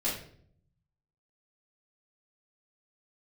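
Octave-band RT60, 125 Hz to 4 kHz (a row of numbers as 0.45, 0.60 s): 1.3, 0.90, 0.70, 0.50, 0.50, 0.45 s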